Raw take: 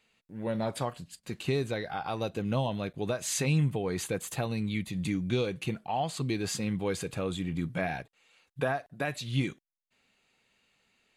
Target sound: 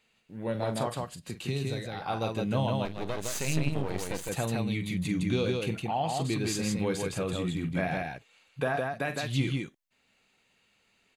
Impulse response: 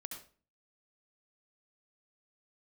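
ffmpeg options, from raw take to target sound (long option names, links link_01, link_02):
-filter_complex "[0:a]aecho=1:1:43.73|160.3:0.282|0.708,asettb=1/sr,asplit=3[link_01][link_02][link_03];[link_01]atrim=end=1.224[link_04];[link_02]atrim=start=1.22:end=2.02,asetpts=PTS-STARTPTS,afade=type=in:duration=0.004:curve=qsin,afade=type=out:start_time=0.796:duration=0.004:curve=qsin,acrossover=split=220|3000[link_05][link_06][link_07];[link_06]acompressor=threshold=-42dB:ratio=2[link_08];[link_05][link_08][link_07]amix=inputs=3:normalize=0[link_09];[link_03]atrim=start=2.016[link_10];[link_04][link_09]acrossfade=duration=0.004:curve1=hsin:curve2=qsin[link_11];[link_11][link_10]acrossfade=duration=0.004:curve1=qsin:curve2=hsin,asettb=1/sr,asplit=3[link_12][link_13][link_14];[link_12]atrim=end=2.854[link_15];[link_13]atrim=start=2.85:end=4.29,asetpts=PTS-STARTPTS,afade=type=in:duration=0.004:curve=qsin,afade=type=out:start_time=1.436:duration=0.004:curve=qsin,aeval=exprs='max(val(0),0)':channel_layout=same[link_16];[link_14]atrim=start=4.286[link_17];[link_15][link_16]acrossfade=duration=0.004:curve1=hsin:curve2=qsin[link_18];[link_18][link_17]acrossfade=duration=0.004:curve1=qsin:curve2=hsin"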